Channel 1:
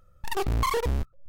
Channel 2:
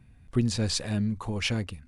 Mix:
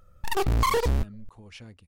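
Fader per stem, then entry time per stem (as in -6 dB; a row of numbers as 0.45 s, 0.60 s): +2.5 dB, -17.0 dB; 0.00 s, 0.10 s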